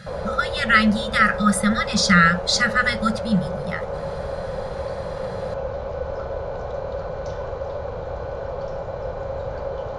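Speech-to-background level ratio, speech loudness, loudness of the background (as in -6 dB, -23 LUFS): 10.5 dB, -19.0 LUFS, -29.5 LUFS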